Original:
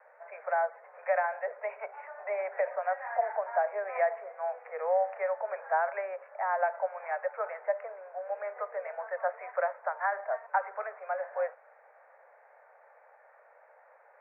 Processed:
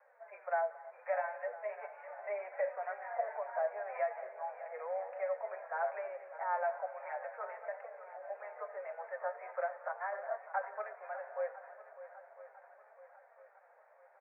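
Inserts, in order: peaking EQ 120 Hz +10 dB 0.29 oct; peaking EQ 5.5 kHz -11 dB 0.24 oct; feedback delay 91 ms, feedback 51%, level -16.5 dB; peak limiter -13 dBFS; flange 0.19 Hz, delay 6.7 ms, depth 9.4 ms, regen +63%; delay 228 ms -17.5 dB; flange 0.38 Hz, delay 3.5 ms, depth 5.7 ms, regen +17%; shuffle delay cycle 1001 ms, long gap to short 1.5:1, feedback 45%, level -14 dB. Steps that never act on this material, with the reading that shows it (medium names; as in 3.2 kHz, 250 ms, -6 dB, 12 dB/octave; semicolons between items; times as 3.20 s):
peaking EQ 120 Hz: input has nothing below 380 Hz; peaking EQ 5.5 kHz: input has nothing above 2.3 kHz; peak limiter -13 dBFS: peak at its input -16.0 dBFS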